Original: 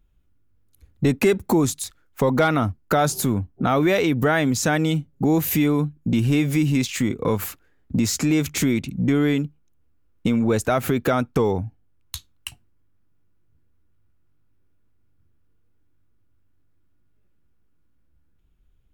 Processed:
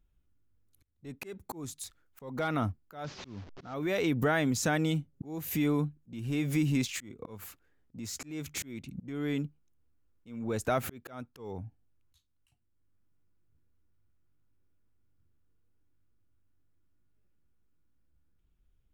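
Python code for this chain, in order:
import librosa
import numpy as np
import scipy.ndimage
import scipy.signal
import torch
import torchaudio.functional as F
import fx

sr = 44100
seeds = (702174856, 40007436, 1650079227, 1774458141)

y = fx.delta_mod(x, sr, bps=32000, step_db=-29.5, at=(3.04, 3.74))
y = fx.auto_swell(y, sr, attack_ms=468.0)
y = y * librosa.db_to_amplitude(-8.0)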